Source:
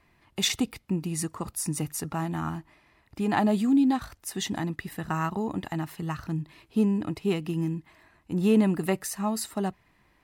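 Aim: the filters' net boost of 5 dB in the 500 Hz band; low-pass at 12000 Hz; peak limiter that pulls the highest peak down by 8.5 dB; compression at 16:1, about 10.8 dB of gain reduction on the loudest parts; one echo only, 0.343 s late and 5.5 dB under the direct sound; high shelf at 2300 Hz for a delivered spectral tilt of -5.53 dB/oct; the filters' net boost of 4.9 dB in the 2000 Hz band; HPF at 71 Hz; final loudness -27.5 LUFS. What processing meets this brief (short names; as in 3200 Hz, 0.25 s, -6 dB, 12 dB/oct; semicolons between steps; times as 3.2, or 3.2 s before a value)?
HPF 71 Hz; LPF 12000 Hz; bell 500 Hz +6.5 dB; bell 2000 Hz +8.5 dB; high shelf 2300 Hz -6 dB; compressor 16:1, threshold -25 dBFS; limiter -22.5 dBFS; echo 0.343 s -5.5 dB; gain +5 dB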